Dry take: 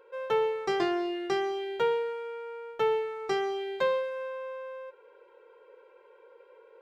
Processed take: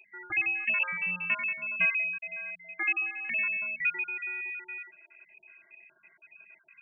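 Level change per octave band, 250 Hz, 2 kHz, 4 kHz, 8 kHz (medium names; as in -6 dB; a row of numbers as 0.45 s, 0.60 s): -15.0 dB, +12.0 dB, under -10 dB, no reading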